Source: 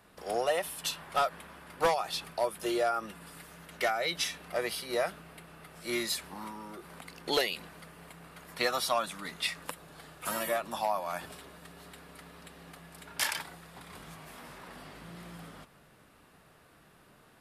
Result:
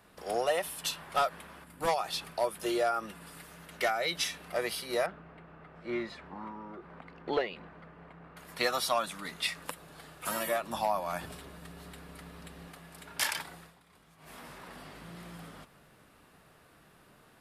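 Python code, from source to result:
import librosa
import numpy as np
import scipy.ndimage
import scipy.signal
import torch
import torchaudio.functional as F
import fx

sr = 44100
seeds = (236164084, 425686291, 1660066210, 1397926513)

y = fx.spec_box(x, sr, start_s=1.64, length_s=0.24, low_hz=330.0, high_hz=6900.0, gain_db=-8)
y = fx.lowpass(y, sr, hz=1700.0, slope=12, at=(5.06, 8.37))
y = fx.low_shelf(y, sr, hz=210.0, db=8.5, at=(10.7, 12.68))
y = fx.edit(y, sr, fx.fade_down_up(start_s=13.61, length_s=0.72, db=-14.0, fade_s=0.16), tone=tone)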